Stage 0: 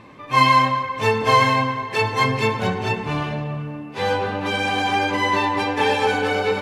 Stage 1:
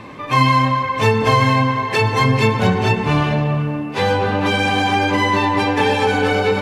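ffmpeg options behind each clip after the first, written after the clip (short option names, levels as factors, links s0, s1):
-filter_complex "[0:a]acrossover=split=270[s0][s1];[s1]acompressor=threshold=0.0447:ratio=2.5[s2];[s0][s2]amix=inputs=2:normalize=0,volume=2.82"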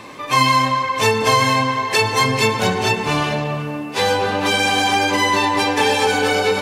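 -af "bass=f=250:g=-8,treble=f=4000:g=11"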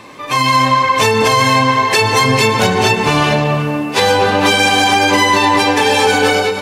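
-af "alimiter=limit=0.299:level=0:latency=1:release=130,dynaudnorm=f=100:g=7:m=3.35"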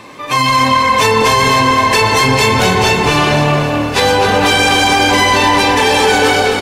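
-filter_complex "[0:a]asplit=2[s0][s1];[s1]aecho=0:1:256|512|768|1024|1280|1536:0.266|0.144|0.0776|0.0419|0.0226|0.0122[s2];[s0][s2]amix=inputs=2:normalize=0,apsyclip=2.24,asplit=2[s3][s4];[s4]asplit=5[s5][s6][s7][s8][s9];[s5]adelay=266,afreqshift=-40,volume=0.316[s10];[s6]adelay=532,afreqshift=-80,volume=0.136[s11];[s7]adelay=798,afreqshift=-120,volume=0.0582[s12];[s8]adelay=1064,afreqshift=-160,volume=0.0251[s13];[s9]adelay=1330,afreqshift=-200,volume=0.0108[s14];[s10][s11][s12][s13][s14]amix=inputs=5:normalize=0[s15];[s3][s15]amix=inputs=2:normalize=0,volume=0.531"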